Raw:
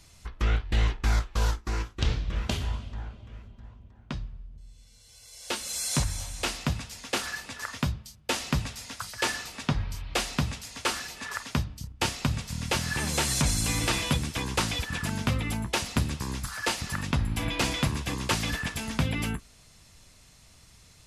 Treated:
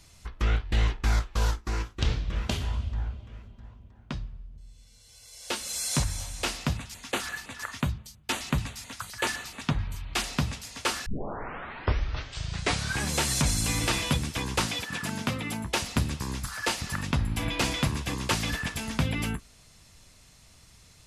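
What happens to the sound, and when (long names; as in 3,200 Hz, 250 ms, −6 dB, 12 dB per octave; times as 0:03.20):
0:02.76–0:03.20: parametric band 73 Hz +13 dB
0:06.77–0:10.24: auto-filter notch square 5.8 Hz 520–5,200 Hz
0:11.06: tape start 2.05 s
0:14.66–0:15.65: high-pass filter 150 Hz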